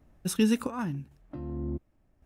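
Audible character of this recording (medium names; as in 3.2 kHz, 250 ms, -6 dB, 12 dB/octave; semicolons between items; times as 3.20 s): chopped level 0.9 Hz, depth 60%, duty 60%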